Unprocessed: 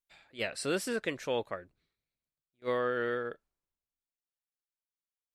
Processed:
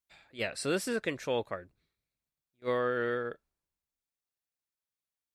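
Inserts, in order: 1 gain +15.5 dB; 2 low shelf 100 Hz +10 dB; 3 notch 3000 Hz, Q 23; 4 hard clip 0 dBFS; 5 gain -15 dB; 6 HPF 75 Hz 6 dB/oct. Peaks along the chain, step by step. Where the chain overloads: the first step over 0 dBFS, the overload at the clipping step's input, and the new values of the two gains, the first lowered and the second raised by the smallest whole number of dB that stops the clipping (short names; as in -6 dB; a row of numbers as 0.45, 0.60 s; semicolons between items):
-2.5, -3.0, -3.5, -3.5, -18.5, -18.0 dBFS; no overload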